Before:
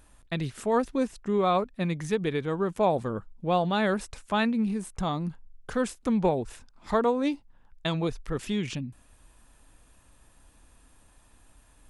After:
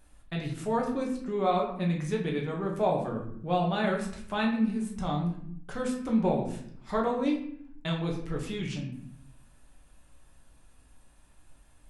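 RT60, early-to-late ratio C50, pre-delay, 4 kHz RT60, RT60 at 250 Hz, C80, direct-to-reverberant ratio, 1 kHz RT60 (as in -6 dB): 0.65 s, 6.5 dB, 5 ms, 0.45 s, 1.0 s, 9.5 dB, -1.5 dB, 0.60 s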